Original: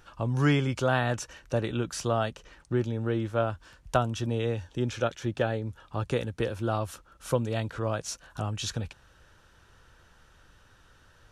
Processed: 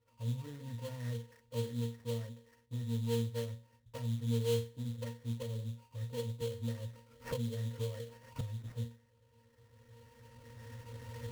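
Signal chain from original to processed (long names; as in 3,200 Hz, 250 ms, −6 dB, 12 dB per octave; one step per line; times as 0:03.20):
camcorder AGC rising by 12 dB per second
treble cut that deepens with the level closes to 2,700 Hz, closed at −23.5 dBFS
high-shelf EQ 5,000 Hz −11.5 dB
hum removal 69.67 Hz, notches 9
hollow resonant body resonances 530/1,400/2,000/3,300 Hz, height 10 dB
asymmetric clip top −25 dBFS
resonances in every octave A#, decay 0.33 s
sample-rate reduction 3,700 Hz, jitter 20%
0:06.41–0:08.41: multiband upward and downward compressor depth 100%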